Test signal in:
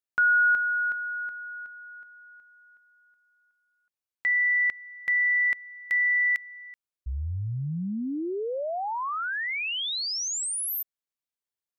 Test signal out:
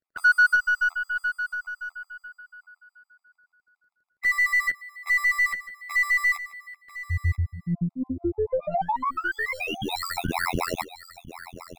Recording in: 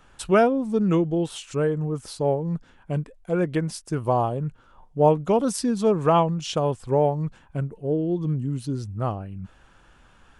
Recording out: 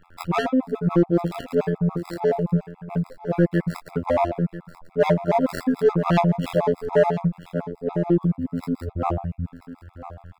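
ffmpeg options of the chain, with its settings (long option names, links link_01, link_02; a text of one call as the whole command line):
ffmpeg -i in.wav -filter_complex "[0:a]adynamicequalizer=threshold=0.0178:dfrequency=660:dqfactor=1.5:tfrequency=660:tqfactor=1.5:attack=5:release=100:ratio=0.4:range=2.5:mode=boostabove:tftype=bell,afftfilt=real='hypot(re,im)*cos(PI*b)':imag='0':win_size=2048:overlap=0.75,acrossover=split=260|2900[link_01][link_02][link_03];[link_01]asplit=2[link_04][link_05];[link_05]adelay=24,volume=-9.5dB[link_06];[link_04][link_06]amix=inputs=2:normalize=0[link_07];[link_03]acrusher=samples=14:mix=1:aa=0.000001[link_08];[link_07][link_02][link_08]amix=inputs=3:normalize=0,asoftclip=type=tanh:threshold=-18dB,aeval=exprs='0.126*(cos(1*acos(clip(val(0)/0.126,-1,1)))-cos(1*PI/2))+0.000794*(cos(3*acos(clip(val(0)/0.126,-1,1)))-cos(3*PI/2))+0.00251*(cos(8*acos(clip(val(0)/0.126,-1,1)))-cos(8*PI/2))':channel_layout=same,asplit=2[link_09][link_10];[link_10]aecho=0:1:987:0.188[link_11];[link_09][link_11]amix=inputs=2:normalize=0,afftfilt=real='re*gt(sin(2*PI*7*pts/sr)*(1-2*mod(floor(b*sr/1024/670),2)),0)':imag='im*gt(sin(2*PI*7*pts/sr)*(1-2*mod(floor(b*sr/1024/670),2)),0)':win_size=1024:overlap=0.75,volume=8.5dB" out.wav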